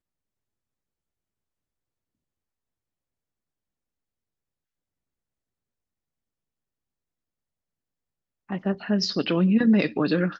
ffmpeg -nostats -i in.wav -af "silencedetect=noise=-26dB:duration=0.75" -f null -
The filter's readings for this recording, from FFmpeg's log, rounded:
silence_start: 0.00
silence_end: 8.51 | silence_duration: 8.51